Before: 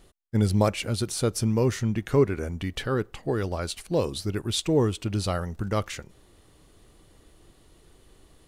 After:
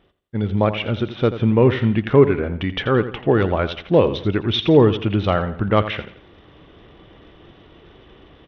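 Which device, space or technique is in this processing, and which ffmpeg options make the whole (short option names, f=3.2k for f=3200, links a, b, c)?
Bluetooth headset: -af "highpass=f=100:p=1,aecho=1:1:85|170|255|340:0.224|0.0828|0.0306|0.0113,dynaudnorm=f=420:g=3:m=12.5dB,aresample=8000,aresample=44100" -ar 32000 -c:a sbc -b:a 64k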